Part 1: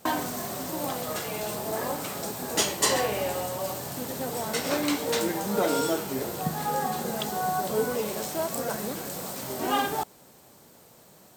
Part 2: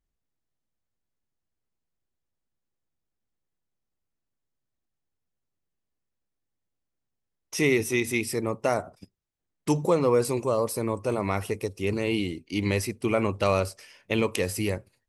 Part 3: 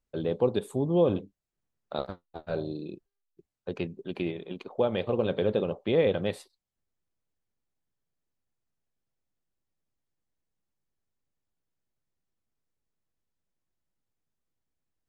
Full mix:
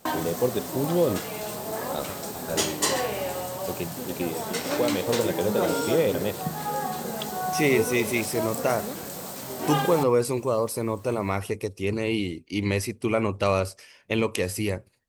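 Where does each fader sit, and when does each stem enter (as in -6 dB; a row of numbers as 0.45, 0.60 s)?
-1.0, +0.5, +0.5 dB; 0.00, 0.00, 0.00 s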